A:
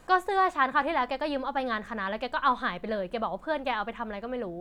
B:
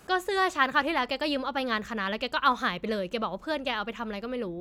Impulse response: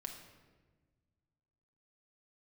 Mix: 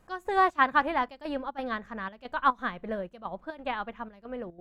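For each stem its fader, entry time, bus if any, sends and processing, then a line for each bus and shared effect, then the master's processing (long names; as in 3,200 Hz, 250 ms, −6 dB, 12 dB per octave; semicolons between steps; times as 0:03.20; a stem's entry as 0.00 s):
+1.0 dB, 0.00 s, no send, bass and treble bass +2 dB, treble −12 dB; gate pattern "x..xxx.xxxxx" 180 BPM −12 dB
−11.5 dB, 0.00 s, no send, bass and treble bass +11 dB, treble +5 dB; automatic ducking −7 dB, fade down 1.85 s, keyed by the first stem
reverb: not used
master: expander for the loud parts 1.5 to 1, over −39 dBFS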